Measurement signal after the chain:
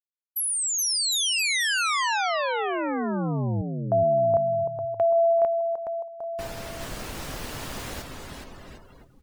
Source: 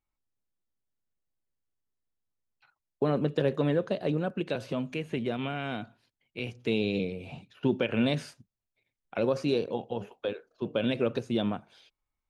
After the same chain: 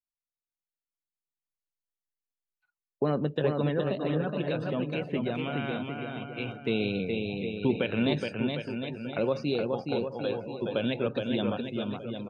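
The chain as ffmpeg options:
-af "adynamicequalizer=threshold=0.0141:dfrequency=390:dqfactor=0.92:tfrequency=390:tqfactor=0.92:attack=5:release=100:ratio=0.375:range=2.5:mode=cutabove:tftype=bell,aecho=1:1:420|756|1025|1240|1412:0.631|0.398|0.251|0.158|0.1,afftdn=nr=21:nf=-47"

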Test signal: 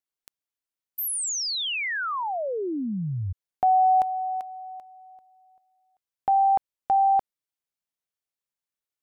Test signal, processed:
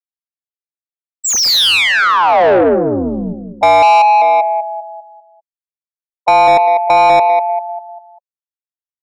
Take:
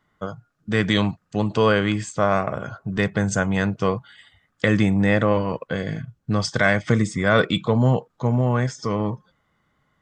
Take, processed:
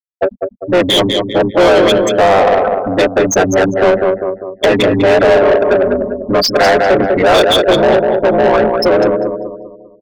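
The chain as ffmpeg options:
-filter_complex "[0:a]aresample=16000,aresample=44100,highshelf=f=6.1k:g=11.5,afftfilt=real='re*gte(hypot(re,im),0.178)':imag='im*gte(hypot(re,im),0.178)':win_size=1024:overlap=0.75,acrossover=split=160[a][b];[a]acompressor=threshold=-32dB:ratio=5:attack=0.44:release=146:knee=2.83:detection=peak[c];[c][b]amix=inputs=2:normalize=0,equalizer=f=125:t=o:w=1:g=-4,equalizer=f=250:t=o:w=1:g=-11,equalizer=f=500:t=o:w=1:g=7,equalizer=f=1k:t=o:w=1:g=-6,equalizer=f=2k:t=o:w=1:g=-12,equalizer=f=4k:t=o:w=1:g=8,asplit=2[d][e];[e]acompressor=threshold=-32dB:ratio=12:attack=45:release=137:knee=6:detection=peak,volume=-1.5dB[f];[d][f]amix=inputs=2:normalize=0,aeval=exprs='val(0)*sin(2*PI*90*n/s)':c=same,asplit=2[g][h];[h]adelay=198,lowpass=f=1.8k:p=1,volume=-8.5dB,asplit=2[i][j];[j]adelay=198,lowpass=f=1.8k:p=1,volume=0.42,asplit=2[k][l];[l]adelay=198,lowpass=f=1.8k:p=1,volume=0.42,asplit=2[m][n];[n]adelay=198,lowpass=f=1.8k:p=1,volume=0.42,asplit=2[o][p];[p]adelay=198,lowpass=f=1.8k:p=1,volume=0.42[q];[i][k][m][o][q]amix=inputs=5:normalize=0[r];[g][r]amix=inputs=2:normalize=0,asplit=2[s][t];[t]highpass=f=720:p=1,volume=29dB,asoftclip=type=tanh:threshold=-6dB[u];[s][u]amix=inputs=2:normalize=0,lowpass=f=3.1k:p=1,volume=-6dB,volume=5dB"

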